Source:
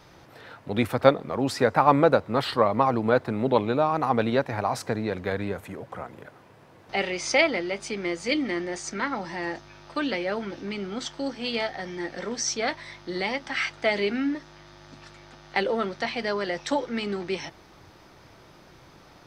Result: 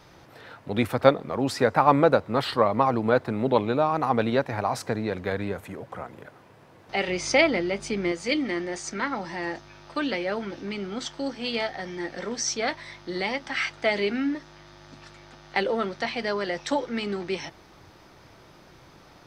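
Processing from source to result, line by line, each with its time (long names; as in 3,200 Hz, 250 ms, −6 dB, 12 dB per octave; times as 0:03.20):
0:07.08–0:08.12: low-shelf EQ 270 Hz +9 dB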